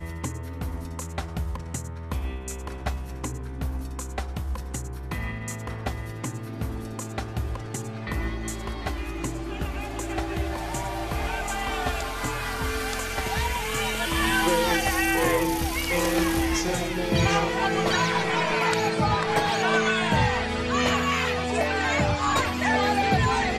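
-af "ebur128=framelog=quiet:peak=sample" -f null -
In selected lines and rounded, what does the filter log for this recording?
Integrated loudness:
  I:         -26.3 LUFS
  Threshold: -36.3 LUFS
Loudness range:
  LRA:        10.0 LU
  Threshold: -46.3 LUFS
  LRA low:   -33.2 LUFS
  LRA high:  -23.2 LUFS
Sample peak:
  Peak:       -8.7 dBFS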